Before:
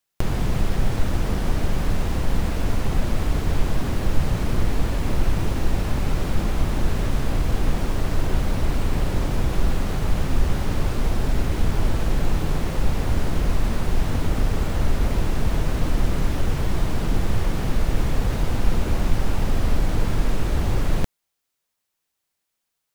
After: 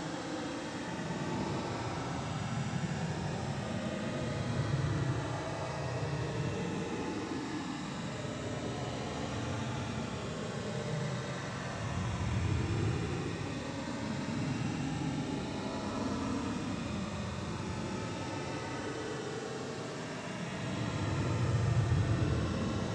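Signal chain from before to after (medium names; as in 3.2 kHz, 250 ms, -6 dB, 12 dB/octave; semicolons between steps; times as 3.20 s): noise-vocoded speech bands 12; Paulstretch 35×, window 0.05 s, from 9.91 s; trim -6.5 dB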